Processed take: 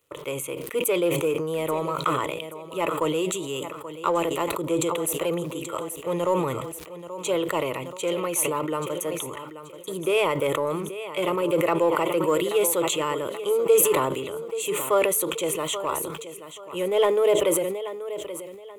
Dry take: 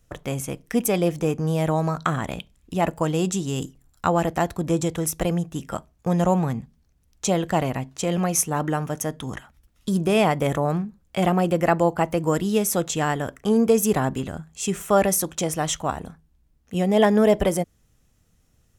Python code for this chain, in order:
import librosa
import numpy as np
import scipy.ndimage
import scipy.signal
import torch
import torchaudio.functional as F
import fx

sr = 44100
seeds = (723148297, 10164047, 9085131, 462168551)

p1 = scipy.signal.sosfilt(scipy.signal.butter(2, 260.0, 'highpass', fs=sr, output='sos'), x)
p2 = fx.fixed_phaser(p1, sr, hz=1100.0, stages=8)
p3 = fx.echo_feedback(p2, sr, ms=831, feedback_pct=31, wet_db=-14.0)
p4 = np.clip(p3, -10.0 ** (-27.0 / 20.0), 10.0 ** (-27.0 / 20.0))
p5 = p3 + F.gain(torch.from_numpy(p4), -11.0).numpy()
p6 = fx.dmg_crackle(p5, sr, seeds[0], per_s=150.0, level_db=-56.0)
y = fx.sustainer(p6, sr, db_per_s=38.0)